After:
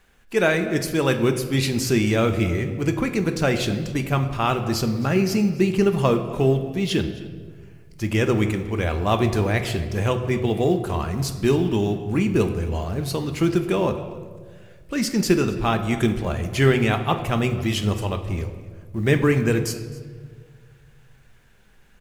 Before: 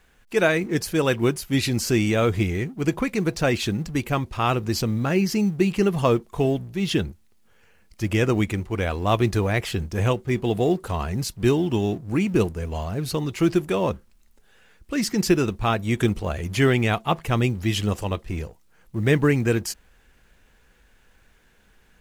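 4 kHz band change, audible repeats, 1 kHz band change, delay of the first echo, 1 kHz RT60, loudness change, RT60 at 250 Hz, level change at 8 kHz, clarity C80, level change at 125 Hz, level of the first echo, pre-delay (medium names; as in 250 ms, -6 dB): +0.5 dB, 1, +1.0 dB, 264 ms, 1.4 s, +1.0 dB, 2.1 s, +0.5 dB, 11.0 dB, +1.5 dB, -20.5 dB, 5 ms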